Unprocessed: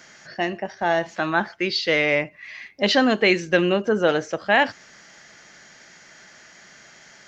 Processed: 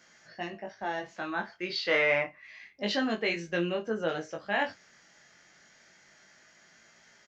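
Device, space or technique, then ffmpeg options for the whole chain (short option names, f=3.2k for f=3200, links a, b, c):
double-tracked vocal: -filter_complex "[0:a]asettb=1/sr,asplit=3[a][b][c];[a]atrim=end=1.704[d];[b]atrim=start=1.7:end=2.39,asetpts=PTS-STARTPTS,afade=t=in:d=0.004:c=qsin,afade=t=out:st=0.686:d=0.004:c=qsin,equalizer=f=1.1k:w=0.74:g=13[e];[c]atrim=start=2.386[f];[d][e]acrossfade=d=0.004:c1=hsin:c2=qsin[g];[g][f]acrossfade=d=0.004:c1=qsin:c2=hsin,asplit=2[h][i];[i]adelay=35,volume=-13dB[j];[h][j]amix=inputs=2:normalize=0,flanger=delay=17.5:depth=4.9:speed=0.28,volume=-8.5dB"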